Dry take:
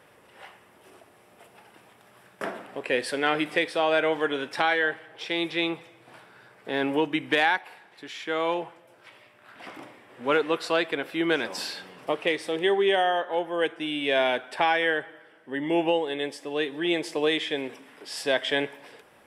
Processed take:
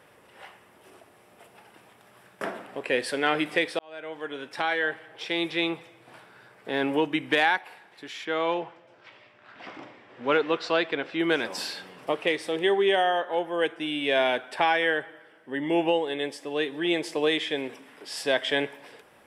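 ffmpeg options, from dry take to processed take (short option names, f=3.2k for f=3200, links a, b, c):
-filter_complex "[0:a]asettb=1/sr,asplit=3[a][b][c];[a]atrim=end=8.254[d];[b]atrim=start=8.25:end=11.2,asetpts=PTS-STARTPTS,afade=t=in:d=0.004:c=qsin,afade=t=out:st=2.946:d=0.004:c=qsin,lowpass=f=6.1k:w=0.5412,lowpass=f=6.1k:w=1.3066[e];[c]atrim=start=11.196[f];[d][e]acrossfade=d=0.004:c1=hsin:c2=qsin[g];[g][f]acrossfade=d=0.004:c1=qsin:c2=hsin,asplit=2[h][i];[h]atrim=end=3.79,asetpts=PTS-STARTPTS,afade=t=out:st=3.786:d=0.004:c=hsin[j];[i]atrim=start=3.79,asetpts=PTS-STARTPTS,afade=t=in:d=1.31[k];[j][k]concat=n=2:v=0:a=1"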